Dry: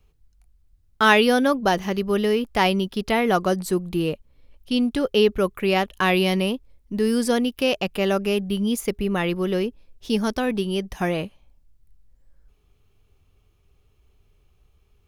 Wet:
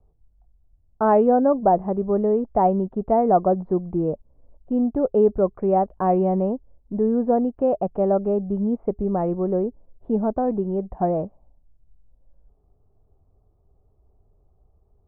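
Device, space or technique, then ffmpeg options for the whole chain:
under water: -af "lowpass=frequency=930:width=0.5412,lowpass=frequency=930:width=1.3066,equalizer=frequency=680:width_type=o:width=0.52:gain=7.5"

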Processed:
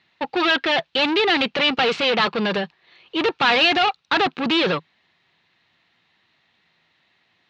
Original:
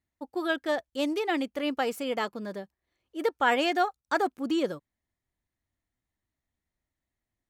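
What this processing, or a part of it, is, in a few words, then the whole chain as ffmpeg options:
overdrive pedal into a guitar cabinet: -filter_complex "[0:a]asplit=2[link_01][link_02];[link_02]highpass=frequency=720:poles=1,volume=34dB,asoftclip=type=tanh:threshold=-11.5dB[link_03];[link_01][link_03]amix=inputs=2:normalize=0,lowpass=frequency=6400:poles=1,volume=-6dB,highpass=98,equalizer=frequency=160:width_type=q:width=4:gain=8,equalizer=frequency=280:width_type=q:width=4:gain=-6,equalizer=frequency=600:width_type=q:width=4:gain=-5,equalizer=frequency=2700:width_type=q:width=4:gain=7,equalizer=frequency=3900:width_type=q:width=4:gain=7,lowpass=frequency=4400:width=0.5412,lowpass=frequency=4400:width=1.3066,asettb=1/sr,asplit=3[link_04][link_05][link_06];[link_04]atrim=end=1.674[link_07];[link_05]atrim=start=1.67:end=2.46,asetpts=PTS-STARTPTS,afade=type=in:duration=0.004:curve=qsin,afade=type=out:start_time=0.786:duration=0.004:curve=qsin,lowpass=frequency=8800:width=0.5412,lowpass=frequency=8800:width=1.3066[link_08];[link_06]atrim=start=2.456[link_09];[link_07][link_08]acrossfade=duration=0.004:curve1=hsin:curve2=qsin[link_10];[link_10][link_09]acrossfade=duration=0.004:curve1=qsin:curve2=hsin"

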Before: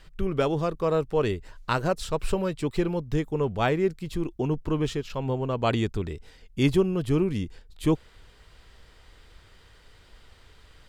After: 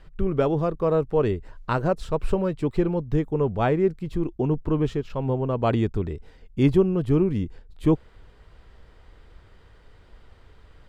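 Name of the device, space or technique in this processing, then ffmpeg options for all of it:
through cloth: -af "highshelf=frequency=2200:gain=-14.5,volume=3.5dB"

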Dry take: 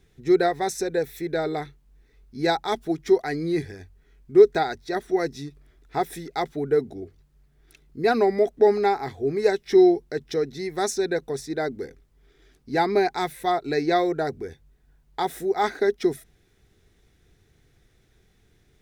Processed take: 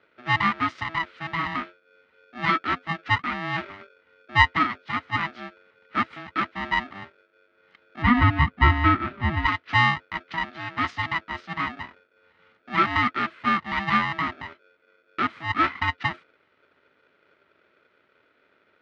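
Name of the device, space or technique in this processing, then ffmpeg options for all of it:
ring modulator pedal into a guitar cabinet: -filter_complex "[0:a]aeval=exprs='val(0)*sgn(sin(2*PI*490*n/s))':channel_layout=same,highpass=110,equalizer=frequency=130:width_type=q:width=4:gain=-6,equalizer=frequency=260:width_type=q:width=4:gain=4,equalizer=frequency=500:width_type=q:width=4:gain=-7,equalizer=frequency=830:width_type=q:width=4:gain=-6,equalizer=frequency=1300:width_type=q:width=4:gain=9,equalizer=frequency=2000:width_type=q:width=4:gain=8,lowpass=frequency=3600:width=0.5412,lowpass=frequency=3600:width=1.3066,asettb=1/sr,asplit=3[link_01][link_02][link_03];[link_01]atrim=end=8.024[link_04];[link_02]atrim=start=8.02:end=9.46,asetpts=PTS-STARTPTS,afade=type=in:duration=0.004:curve=qsin,afade=type=out:start_time=1.436:duration=0.004:curve=qsin,bass=frequency=250:gain=13,treble=frequency=4000:gain=-9[link_05];[link_03]atrim=start=9.456[link_06];[link_04][link_05]acrossfade=duration=0.004:curve1=hsin:curve2=qsin[link_07];[link_07][link_06]acrossfade=duration=0.004:curve1=qsin:curve2=hsin,volume=-3dB"

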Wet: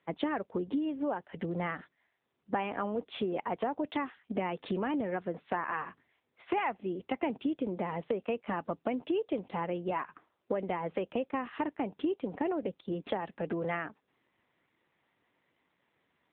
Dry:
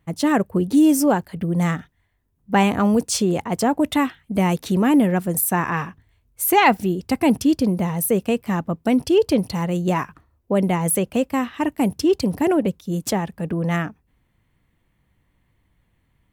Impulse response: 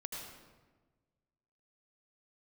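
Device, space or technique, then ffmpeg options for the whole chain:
voicemail: -af "highpass=360,lowpass=3200,acompressor=threshold=-29dB:ratio=6" -ar 8000 -c:a libopencore_amrnb -b:a 7950

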